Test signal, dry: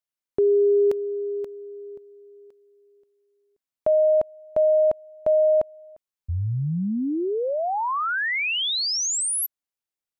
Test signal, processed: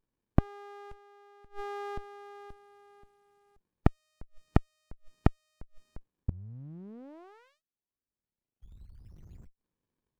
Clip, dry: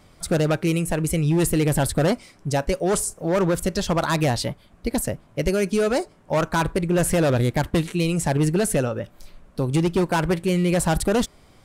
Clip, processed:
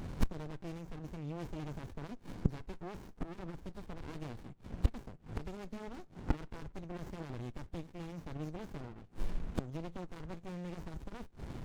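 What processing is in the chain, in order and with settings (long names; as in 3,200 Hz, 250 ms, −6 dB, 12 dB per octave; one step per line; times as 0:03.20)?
hearing-aid frequency compression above 3,300 Hz 1.5 to 1
gate with flip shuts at −25 dBFS, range −29 dB
windowed peak hold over 65 samples
level +11 dB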